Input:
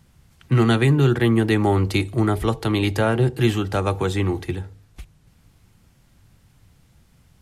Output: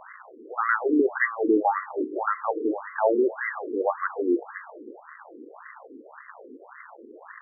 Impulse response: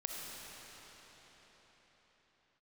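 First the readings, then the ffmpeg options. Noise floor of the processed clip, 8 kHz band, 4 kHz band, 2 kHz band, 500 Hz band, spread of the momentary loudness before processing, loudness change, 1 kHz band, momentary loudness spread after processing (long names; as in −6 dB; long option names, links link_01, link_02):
−49 dBFS, below −40 dB, below −40 dB, 0.0 dB, −2.0 dB, 7 LU, −5.0 dB, +1.0 dB, 22 LU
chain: -filter_complex "[0:a]aeval=exprs='val(0)+0.5*0.0355*sgn(val(0))':channel_layout=same,lowpass=frequency=2500:width_type=q:width=1.8,asplit=2[link_01][link_02];[1:a]atrim=start_sample=2205,asetrate=70560,aresample=44100,adelay=23[link_03];[link_02][link_03]afir=irnorm=-1:irlink=0,volume=-9.5dB[link_04];[link_01][link_04]amix=inputs=2:normalize=0,afftfilt=real='re*between(b*sr/1024,330*pow(1500/330,0.5+0.5*sin(2*PI*1.8*pts/sr))/1.41,330*pow(1500/330,0.5+0.5*sin(2*PI*1.8*pts/sr))*1.41)':imag='im*between(b*sr/1024,330*pow(1500/330,0.5+0.5*sin(2*PI*1.8*pts/sr))/1.41,330*pow(1500/330,0.5+0.5*sin(2*PI*1.8*pts/sr))*1.41)':win_size=1024:overlap=0.75,volume=1.5dB"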